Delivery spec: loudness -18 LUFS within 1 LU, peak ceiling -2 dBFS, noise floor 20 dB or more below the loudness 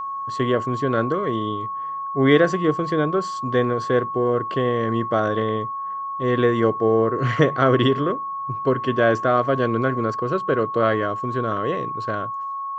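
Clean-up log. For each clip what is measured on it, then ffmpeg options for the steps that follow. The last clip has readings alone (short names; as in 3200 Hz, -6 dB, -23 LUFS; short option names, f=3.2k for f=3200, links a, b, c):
steady tone 1100 Hz; tone level -26 dBFS; loudness -21.5 LUFS; peak -3.0 dBFS; loudness target -18.0 LUFS
-> -af "bandreject=f=1.1k:w=30"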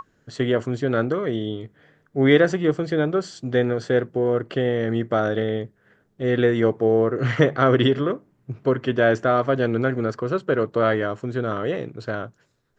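steady tone none; loudness -22.0 LUFS; peak -2.5 dBFS; loudness target -18.0 LUFS
-> -af "volume=4dB,alimiter=limit=-2dB:level=0:latency=1"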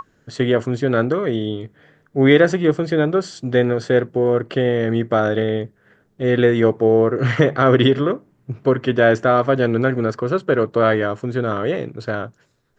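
loudness -18.5 LUFS; peak -2.0 dBFS; noise floor -61 dBFS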